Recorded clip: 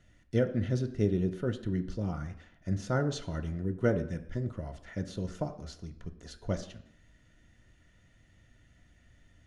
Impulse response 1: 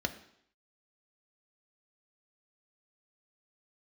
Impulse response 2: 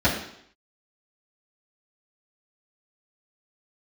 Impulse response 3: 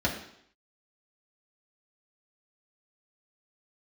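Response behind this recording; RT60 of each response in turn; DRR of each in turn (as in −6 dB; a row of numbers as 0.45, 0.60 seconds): 1; 0.70, 0.70, 0.70 seconds; 6.5, −10.0, −3.5 decibels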